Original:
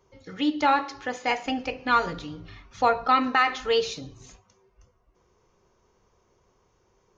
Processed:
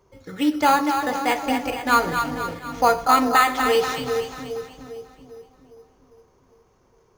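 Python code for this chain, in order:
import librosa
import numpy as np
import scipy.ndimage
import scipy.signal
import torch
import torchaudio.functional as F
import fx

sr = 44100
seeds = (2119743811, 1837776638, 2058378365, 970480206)

p1 = fx.echo_split(x, sr, split_hz=620.0, low_ms=403, high_ms=243, feedback_pct=52, wet_db=-6)
p2 = fx.sample_hold(p1, sr, seeds[0], rate_hz=5500.0, jitter_pct=0)
y = p1 + F.gain(torch.from_numpy(p2), -4.0).numpy()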